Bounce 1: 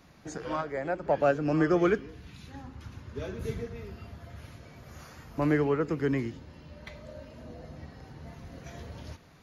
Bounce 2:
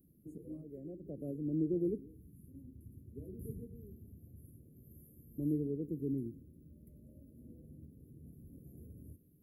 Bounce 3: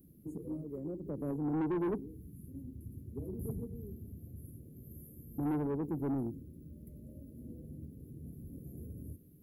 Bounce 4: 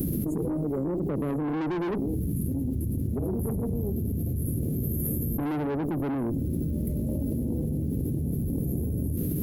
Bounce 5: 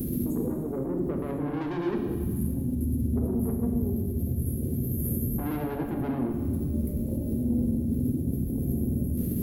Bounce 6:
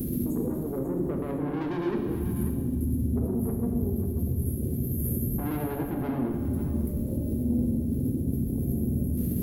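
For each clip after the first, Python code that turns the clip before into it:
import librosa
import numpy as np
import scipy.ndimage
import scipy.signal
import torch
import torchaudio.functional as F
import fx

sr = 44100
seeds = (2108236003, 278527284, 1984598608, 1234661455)

y1 = scipy.signal.sosfilt(scipy.signal.cheby2(4, 50, [830.0, 6100.0], 'bandstop', fs=sr, output='sos'), x)
y1 = fx.tilt_eq(y1, sr, slope=2.0)
y1 = F.gain(torch.from_numpy(y1), -2.5).numpy()
y2 = 10.0 ** (-36.5 / 20.0) * np.tanh(y1 / 10.0 ** (-36.5 / 20.0))
y2 = F.gain(torch.from_numpy(y2), 7.0).numpy()
y3 = fx.tube_stage(y2, sr, drive_db=36.0, bias=0.45)
y3 = fx.env_flatten(y3, sr, amount_pct=100)
y3 = F.gain(torch.from_numpy(y3), 9.0).numpy()
y4 = fx.rev_fdn(y3, sr, rt60_s=1.6, lf_ratio=1.5, hf_ratio=1.0, size_ms=25.0, drr_db=2.0)
y4 = F.gain(torch.from_numpy(y4), -3.5).numpy()
y5 = y4 + 10.0 ** (-11.5 / 20.0) * np.pad(y4, (int(541 * sr / 1000.0), 0))[:len(y4)]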